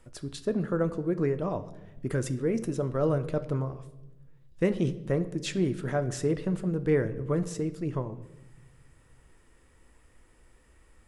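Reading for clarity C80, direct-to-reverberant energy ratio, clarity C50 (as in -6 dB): 17.0 dB, 10.0 dB, 15.0 dB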